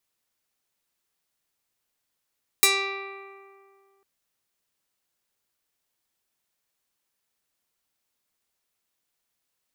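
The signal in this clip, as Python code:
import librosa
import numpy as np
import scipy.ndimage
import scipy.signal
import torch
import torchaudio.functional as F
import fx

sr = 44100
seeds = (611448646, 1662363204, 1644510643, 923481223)

y = fx.pluck(sr, length_s=1.4, note=67, decay_s=2.21, pick=0.26, brightness='medium')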